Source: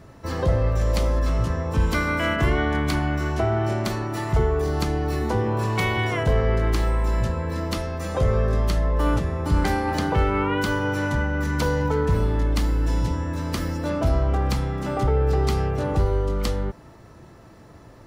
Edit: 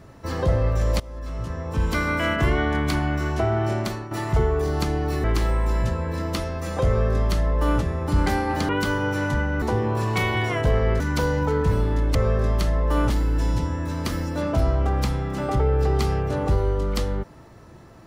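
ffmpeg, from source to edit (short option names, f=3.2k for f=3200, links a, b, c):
-filter_complex "[0:a]asplit=9[a][b][c][d][e][f][g][h][i];[a]atrim=end=1,asetpts=PTS-STARTPTS,afade=t=out:st=0.996:d=0.004:c=hsin:silence=0.0841395[j];[b]atrim=start=1:end=4.11,asetpts=PTS-STARTPTS,afade=t=in:d=1.07:silence=0.0841395,afade=t=out:st=2.79:d=0.32:silence=0.316228[k];[c]atrim=start=4.11:end=5.242,asetpts=PTS-STARTPTS,afade=t=in:d=0.004:c=hsin:silence=0.316228[l];[d]atrim=start=6.618:end=10.072[m];[e]atrim=start=10.498:end=11.432[n];[f]atrim=start=5.238:end=6.622[o];[g]atrim=start=11.428:end=12.582[p];[h]atrim=start=8.238:end=9.192[q];[i]atrim=start=12.578[r];[j][k][l]concat=n=3:v=0:a=1[s];[s][m]acrossfade=d=0.004:c1=hsin:c2=hsin[t];[t][n]acrossfade=d=0.004:c1=hsin:c2=hsin[u];[u][o]acrossfade=d=0.004:c1=hsin:c2=hsin[v];[v][p]acrossfade=d=0.004:c1=hsin:c2=hsin[w];[w][q]acrossfade=d=0.004:c1=hsin:c2=hsin[x];[x][r]acrossfade=d=0.004:c1=hsin:c2=hsin"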